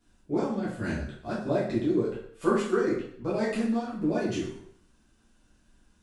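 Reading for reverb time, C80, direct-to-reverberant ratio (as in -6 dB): 0.60 s, 7.5 dB, -9.0 dB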